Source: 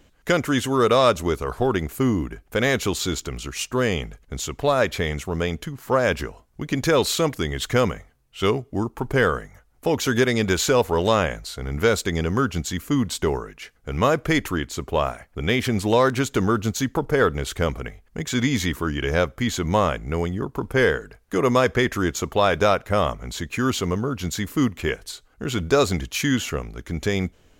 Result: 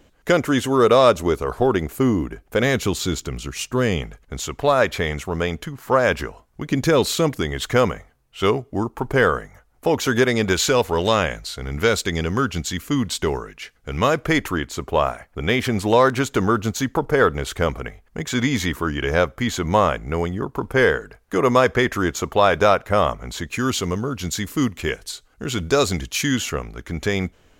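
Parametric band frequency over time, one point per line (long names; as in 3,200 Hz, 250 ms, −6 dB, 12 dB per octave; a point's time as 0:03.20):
parametric band +4 dB 2.4 octaves
510 Hz
from 0:02.63 140 Hz
from 0:04.02 1,100 Hz
from 0:06.69 200 Hz
from 0:07.41 860 Hz
from 0:10.53 3,400 Hz
from 0:14.24 960 Hz
from 0:23.48 6,700 Hz
from 0:26.52 1,300 Hz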